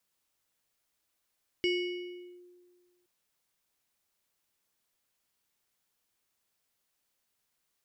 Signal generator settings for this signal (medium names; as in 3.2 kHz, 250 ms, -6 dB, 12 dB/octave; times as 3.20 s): FM tone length 1.42 s, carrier 356 Hz, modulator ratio 7.21, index 0.93, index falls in 0.78 s linear, decay 1.71 s, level -24 dB